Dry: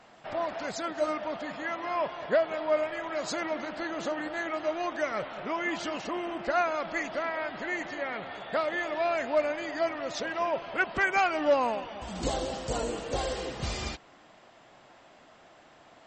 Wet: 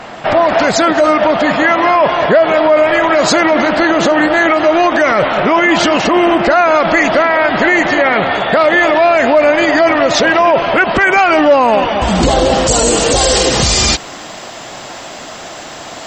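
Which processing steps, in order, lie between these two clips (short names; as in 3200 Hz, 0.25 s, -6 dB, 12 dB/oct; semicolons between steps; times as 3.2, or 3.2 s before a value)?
tone controls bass 0 dB, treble -4 dB, from 12.66 s treble +12 dB; maximiser +27 dB; gain -1 dB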